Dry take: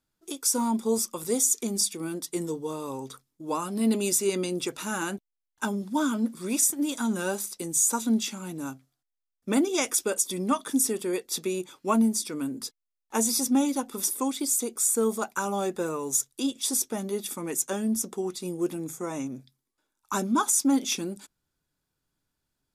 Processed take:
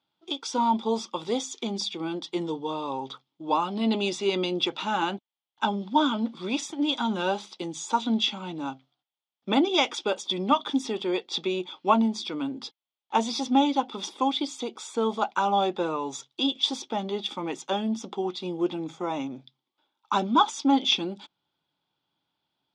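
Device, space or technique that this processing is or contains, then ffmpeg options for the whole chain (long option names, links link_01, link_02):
kitchen radio: -af "highpass=190,equalizer=frequency=240:width_type=q:width=4:gain=-4,equalizer=frequency=440:width_type=q:width=4:gain=-5,equalizer=frequency=840:width_type=q:width=4:gain=8,equalizer=frequency=1700:width_type=q:width=4:gain=-7,equalizer=frequency=3300:width_type=q:width=4:gain=10,lowpass=frequency=4300:width=0.5412,lowpass=frequency=4300:width=1.3066,volume=3.5dB"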